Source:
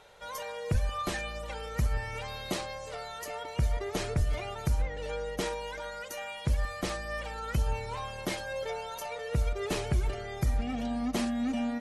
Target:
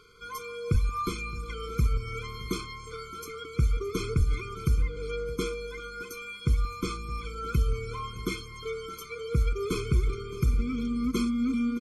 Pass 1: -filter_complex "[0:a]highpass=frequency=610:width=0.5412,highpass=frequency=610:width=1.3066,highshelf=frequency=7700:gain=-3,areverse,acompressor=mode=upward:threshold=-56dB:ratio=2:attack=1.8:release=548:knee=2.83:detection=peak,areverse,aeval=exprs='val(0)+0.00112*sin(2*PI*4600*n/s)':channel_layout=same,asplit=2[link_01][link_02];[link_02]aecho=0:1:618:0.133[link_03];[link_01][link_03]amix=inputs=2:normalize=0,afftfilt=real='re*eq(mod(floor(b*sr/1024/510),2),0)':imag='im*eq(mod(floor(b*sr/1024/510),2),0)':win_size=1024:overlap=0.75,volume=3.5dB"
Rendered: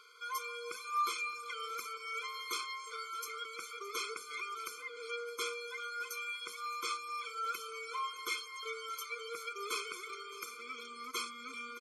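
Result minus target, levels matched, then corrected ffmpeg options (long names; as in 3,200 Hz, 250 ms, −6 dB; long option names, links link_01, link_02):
500 Hz band −3.0 dB
-filter_complex "[0:a]highshelf=frequency=7700:gain=-3,areverse,acompressor=mode=upward:threshold=-56dB:ratio=2:attack=1.8:release=548:knee=2.83:detection=peak,areverse,aeval=exprs='val(0)+0.00112*sin(2*PI*4600*n/s)':channel_layout=same,asplit=2[link_01][link_02];[link_02]aecho=0:1:618:0.133[link_03];[link_01][link_03]amix=inputs=2:normalize=0,afftfilt=real='re*eq(mod(floor(b*sr/1024/510),2),0)':imag='im*eq(mod(floor(b*sr/1024/510),2),0)':win_size=1024:overlap=0.75,volume=3.5dB"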